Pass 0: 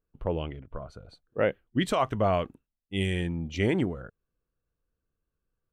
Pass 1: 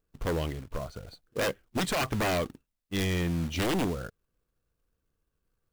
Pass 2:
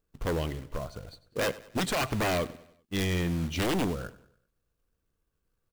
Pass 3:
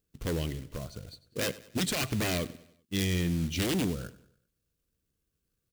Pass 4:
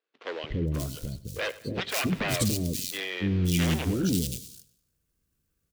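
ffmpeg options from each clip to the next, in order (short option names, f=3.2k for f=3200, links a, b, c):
-af "acrusher=bits=3:mode=log:mix=0:aa=0.000001,aeval=exprs='0.158*sin(PI/2*2.51*val(0)/0.158)':c=same,volume=-8dB"
-af "aecho=1:1:97|194|291|388:0.119|0.0547|0.0251|0.0116"
-af "highpass=f=96:p=1,equalizer=f=910:w=0.61:g=-12.5,volume=3.5dB"
-filter_complex "[0:a]acrossover=split=440|3800[a][b][c];[a]adelay=290[d];[c]adelay=530[e];[d][b][e]amix=inputs=3:normalize=0,volume=4.5dB"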